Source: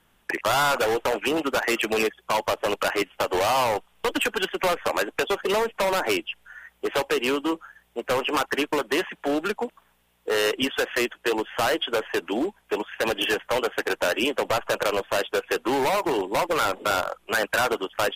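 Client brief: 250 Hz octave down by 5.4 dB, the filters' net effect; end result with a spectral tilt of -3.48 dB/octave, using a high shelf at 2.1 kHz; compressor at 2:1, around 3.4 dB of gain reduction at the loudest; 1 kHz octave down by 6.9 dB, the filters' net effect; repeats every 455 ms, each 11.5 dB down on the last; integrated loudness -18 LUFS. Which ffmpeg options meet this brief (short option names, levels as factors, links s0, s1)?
-af "equalizer=f=250:t=o:g=-7,equalizer=f=1000:t=o:g=-7,highshelf=f=2100:g=-7.5,acompressor=threshold=0.0316:ratio=2,aecho=1:1:455|910|1365:0.266|0.0718|0.0194,volume=5.31"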